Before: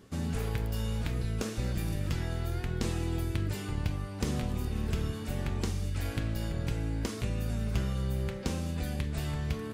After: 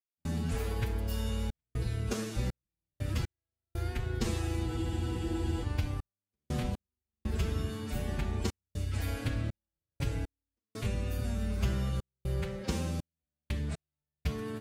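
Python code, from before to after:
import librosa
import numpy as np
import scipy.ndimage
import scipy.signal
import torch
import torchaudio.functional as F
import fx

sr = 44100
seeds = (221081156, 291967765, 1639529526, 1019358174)

y = fx.stretch_vocoder(x, sr, factor=1.5)
y = fx.step_gate(y, sr, bpm=60, pattern='.xxxxx.xxx..x.', floor_db=-60.0, edge_ms=4.5)
y = fx.spec_freeze(y, sr, seeds[0], at_s=4.68, hold_s=0.94)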